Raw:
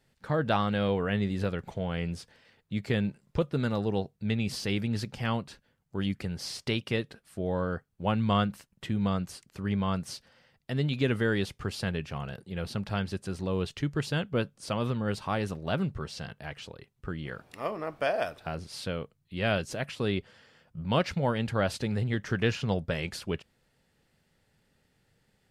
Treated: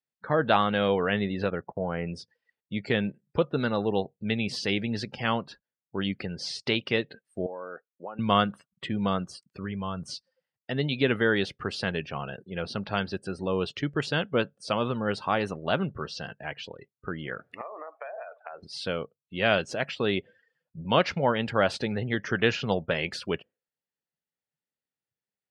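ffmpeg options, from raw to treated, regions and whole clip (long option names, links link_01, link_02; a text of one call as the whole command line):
ffmpeg -i in.wav -filter_complex "[0:a]asettb=1/sr,asplit=3[link_01][link_02][link_03];[link_01]atrim=end=1.504[link_04];[link_02]atrim=start=1.5:end=2.07,asetpts=PTS-STARTPTS,afade=type=in:duration=0.004:curve=qsin,afade=type=out:start_time=0.566:duration=0.004:curve=qsin,lowpass=1800,agate=range=-19dB:threshold=-43dB:ratio=16:release=100:detection=peak[link_05];[link_03]atrim=start=2.066[link_06];[link_04][link_05]acrossfade=duration=0.004:curve1=hsin:curve2=qsin[link_07];[link_07][link_06]acrossfade=duration=0.004:curve1=qsin:curve2=hsin,asettb=1/sr,asplit=3[link_08][link_09][link_10];[link_08]atrim=end=7.464[link_11];[link_09]atrim=start=7.46:end=8.19,asetpts=PTS-STARTPTS,afade=type=in:duration=0.004:curve=qsin,afade=type=out:start_time=0.726:duration=0.004:curve=qsin,highpass=370,lowpass=2300,acompressor=threshold=-37dB:ratio=12:attack=3.2:release=140:knee=1:detection=peak[link_12];[link_10]atrim=start=8.186[link_13];[link_11][link_12]acrossfade=duration=0.004:curve1=hsin:curve2=qsin[link_14];[link_14][link_13]acrossfade=duration=0.004:curve1=qsin:curve2=hsin,asettb=1/sr,asplit=3[link_15][link_16][link_17];[link_15]atrim=end=9.484[link_18];[link_16]atrim=start=9.48:end=10.06,asetpts=PTS-STARTPTS,afade=type=in:duration=0.004:curve=qsin,afade=type=out:start_time=0.576:duration=0.004:curve=qsin,asubboost=boost=11:cutoff=160,acompressor=threshold=-28dB:ratio=8:attack=3.2:release=140:knee=1:detection=peak[link_19];[link_17]atrim=start=10.056[link_20];[link_18][link_19]acrossfade=duration=0.004:curve1=hsin:curve2=qsin[link_21];[link_21][link_20]acrossfade=duration=0.004:curve1=qsin:curve2=hsin,asettb=1/sr,asplit=3[link_22][link_23][link_24];[link_22]atrim=end=17.614[link_25];[link_23]atrim=start=17.61:end=18.63,asetpts=PTS-STARTPTS,afade=type=in:duration=0.004:curve=qsin,afade=type=out:start_time=1.016:duration=0.004:curve=qsin,acrossover=split=450 2800:gain=0.0708 1 0.0631[link_26][link_27][link_28];[link_26][link_27][link_28]amix=inputs=3:normalize=0,acompressor=threshold=-39dB:ratio=20:attack=3.2:release=140:knee=1:detection=peak[link_29];[link_24]atrim=start=18.626[link_30];[link_25][link_29]acrossfade=duration=0.004:curve1=hsin:curve2=qsin[link_31];[link_31][link_30]acrossfade=duration=0.004:curve1=qsin:curve2=hsin,afftdn=noise_reduction=31:noise_floor=-48,acrossover=split=5900[link_32][link_33];[link_33]acompressor=threshold=-56dB:ratio=4:attack=1:release=60[link_34];[link_32][link_34]amix=inputs=2:normalize=0,highpass=frequency=330:poles=1,volume=6dB" out.wav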